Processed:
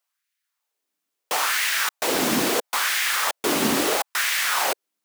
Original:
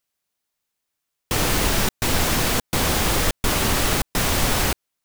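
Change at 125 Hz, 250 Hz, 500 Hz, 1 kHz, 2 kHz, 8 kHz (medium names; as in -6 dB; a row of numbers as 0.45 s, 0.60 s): -16.5 dB, -1.5 dB, -0.5 dB, 0.0 dB, +2.0 dB, -1.5 dB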